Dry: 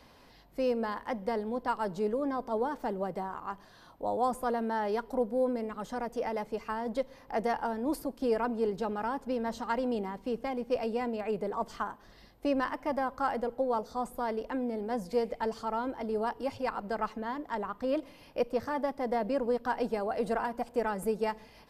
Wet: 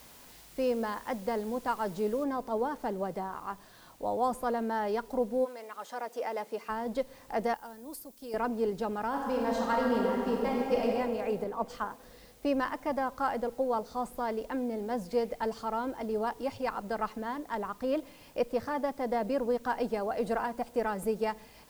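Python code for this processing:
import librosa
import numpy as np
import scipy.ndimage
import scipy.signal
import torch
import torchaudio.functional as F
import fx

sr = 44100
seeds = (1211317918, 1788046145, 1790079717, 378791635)

y = fx.noise_floor_step(x, sr, seeds[0], at_s=2.24, before_db=-55, after_db=-62, tilt_db=0.0)
y = fx.highpass(y, sr, hz=fx.line((5.44, 890.0), (6.68, 250.0)), slope=12, at=(5.44, 6.68), fade=0.02)
y = fx.pre_emphasis(y, sr, coefficient=0.8, at=(7.54, 8.34))
y = fx.reverb_throw(y, sr, start_s=9.08, length_s=1.76, rt60_s=2.5, drr_db=-2.5)
y = fx.band_widen(y, sr, depth_pct=70, at=(11.44, 11.91))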